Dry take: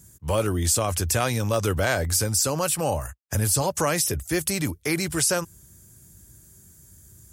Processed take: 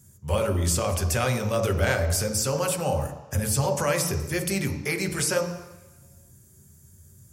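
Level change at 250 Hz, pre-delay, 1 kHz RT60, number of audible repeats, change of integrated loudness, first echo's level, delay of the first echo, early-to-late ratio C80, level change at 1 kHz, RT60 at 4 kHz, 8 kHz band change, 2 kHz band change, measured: −1.5 dB, 3 ms, 1.2 s, no echo audible, −1.5 dB, no echo audible, no echo audible, 10.0 dB, −1.5 dB, 1.3 s, −4.5 dB, −0.5 dB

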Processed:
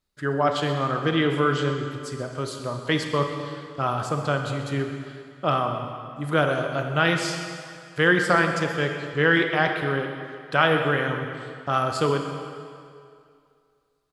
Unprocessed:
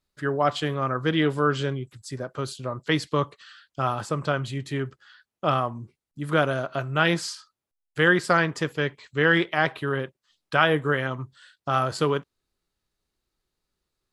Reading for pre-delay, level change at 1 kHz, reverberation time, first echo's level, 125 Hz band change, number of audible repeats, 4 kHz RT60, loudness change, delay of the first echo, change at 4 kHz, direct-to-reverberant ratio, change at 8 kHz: 30 ms, +1.5 dB, 2.3 s, −16.0 dB, +1.0 dB, 1, 2.0 s, +1.0 dB, 130 ms, +1.5 dB, 4.0 dB, +1.0 dB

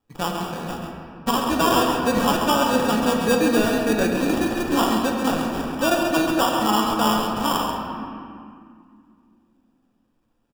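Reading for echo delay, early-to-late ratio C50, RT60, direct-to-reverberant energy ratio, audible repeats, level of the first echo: 135 ms, 1.0 dB, 2.2 s, −0.5 dB, 1, −7.0 dB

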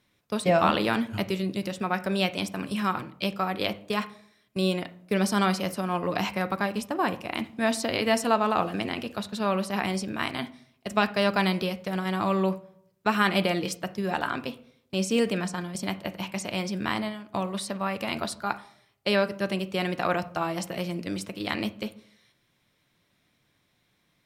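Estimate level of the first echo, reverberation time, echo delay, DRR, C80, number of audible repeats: no echo audible, 0.65 s, no echo audible, 10.0 dB, 21.0 dB, no echo audible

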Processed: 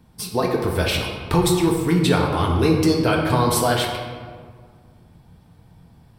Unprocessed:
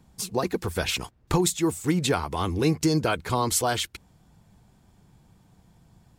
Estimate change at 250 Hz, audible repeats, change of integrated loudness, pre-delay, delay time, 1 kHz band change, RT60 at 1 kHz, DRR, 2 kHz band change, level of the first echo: +6.5 dB, no echo audible, +6.0 dB, 4 ms, no echo audible, +6.0 dB, 1.7 s, 0.0 dB, +6.0 dB, no echo audible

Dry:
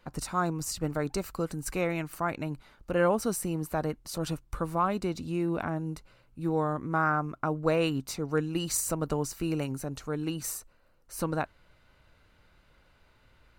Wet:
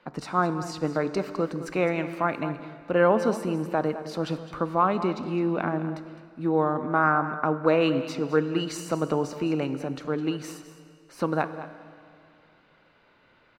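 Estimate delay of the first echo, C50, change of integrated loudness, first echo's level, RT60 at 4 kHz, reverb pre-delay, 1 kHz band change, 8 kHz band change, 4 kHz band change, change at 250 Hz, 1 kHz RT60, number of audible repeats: 210 ms, 10.5 dB, +4.5 dB, −14.0 dB, 2.2 s, 18 ms, +5.5 dB, −9.5 dB, +1.5 dB, +4.5 dB, 2.4 s, 1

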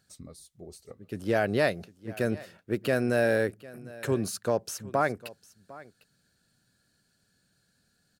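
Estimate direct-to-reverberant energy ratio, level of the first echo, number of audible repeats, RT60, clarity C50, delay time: no reverb audible, −20.0 dB, 1, no reverb audible, no reverb audible, 753 ms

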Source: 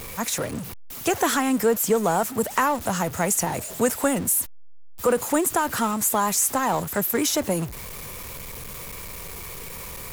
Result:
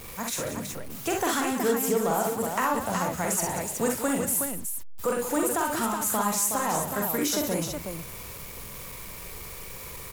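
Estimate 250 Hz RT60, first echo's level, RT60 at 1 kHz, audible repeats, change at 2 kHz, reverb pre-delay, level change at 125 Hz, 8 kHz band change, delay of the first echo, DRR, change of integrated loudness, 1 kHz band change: no reverb audible, −4.0 dB, no reverb audible, 3, −3.5 dB, no reverb audible, −4.0 dB, −3.5 dB, 44 ms, no reverb audible, −4.0 dB, −3.5 dB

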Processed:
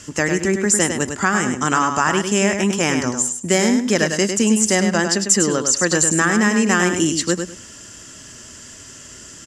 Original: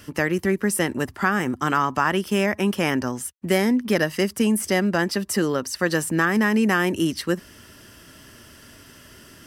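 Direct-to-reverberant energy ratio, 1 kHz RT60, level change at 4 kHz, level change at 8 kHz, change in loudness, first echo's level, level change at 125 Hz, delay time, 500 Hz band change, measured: no reverb audible, no reverb audible, +6.5 dB, +14.5 dB, +5.0 dB, −6.5 dB, +3.5 dB, 102 ms, +3.5 dB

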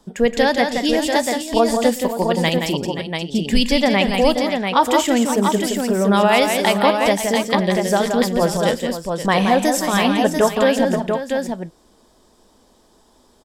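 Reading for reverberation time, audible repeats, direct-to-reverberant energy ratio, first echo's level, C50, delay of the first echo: no reverb audible, 5, no reverb audible, −20.0 dB, no reverb audible, 114 ms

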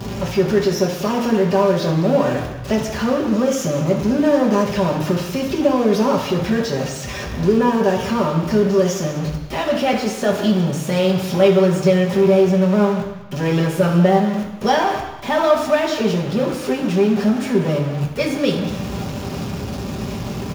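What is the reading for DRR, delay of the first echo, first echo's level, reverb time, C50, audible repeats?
−2.0 dB, 192 ms, −15.0 dB, 1.0 s, 5.5 dB, 1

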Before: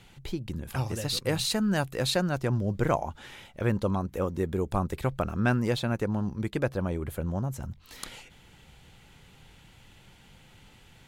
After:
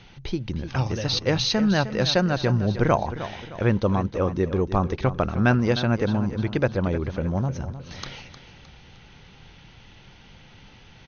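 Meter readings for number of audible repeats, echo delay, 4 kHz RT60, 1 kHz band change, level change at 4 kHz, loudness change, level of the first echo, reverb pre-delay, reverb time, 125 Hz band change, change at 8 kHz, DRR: 3, 308 ms, no reverb audible, +6.0 dB, +6.0 dB, +5.5 dB, −12.5 dB, no reverb audible, no reverb audible, +6.0 dB, −0.5 dB, no reverb audible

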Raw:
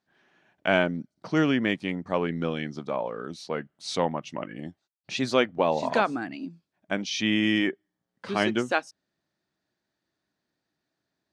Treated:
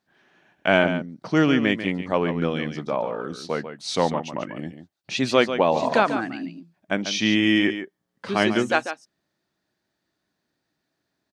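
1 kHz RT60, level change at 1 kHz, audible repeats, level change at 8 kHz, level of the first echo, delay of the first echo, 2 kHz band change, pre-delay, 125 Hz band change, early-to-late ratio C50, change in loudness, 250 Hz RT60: no reverb audible, +4.5 dB, 1, +4.5 dB, −10.0 dB, 143 ms, +4.5 dB, no reverb audible, +4.5 dB, no reverb audible, +4.5 dB, no reverb audible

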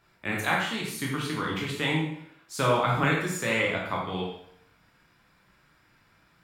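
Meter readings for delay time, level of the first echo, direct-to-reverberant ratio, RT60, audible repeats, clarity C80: no echo audible, no echo audible, −3.0 dB, 0.70 s, no echo audible, 6.0 dB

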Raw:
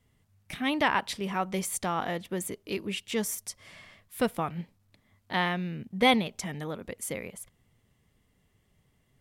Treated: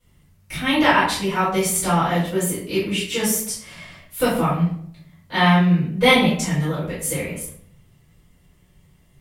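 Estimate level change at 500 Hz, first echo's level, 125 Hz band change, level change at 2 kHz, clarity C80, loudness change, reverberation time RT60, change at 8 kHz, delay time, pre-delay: +10.0 dB, no echo audible, +16.0 dB, +10.0 dB, 8.0 dB, +10.5 dB, 0.60 s, +11.5 dB, no echo audible, 3 ms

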